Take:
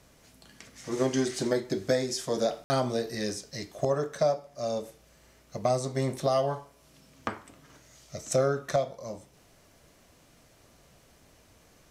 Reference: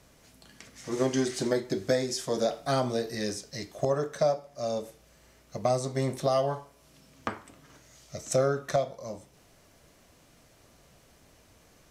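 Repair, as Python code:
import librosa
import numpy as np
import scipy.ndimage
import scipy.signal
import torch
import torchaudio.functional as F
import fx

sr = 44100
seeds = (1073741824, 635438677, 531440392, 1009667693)

y = fx.fix_ambience(x, sr, seeds[0], print_start_s=9.29, print_end_s=9.79, start_s=2.64, end_s=2.7)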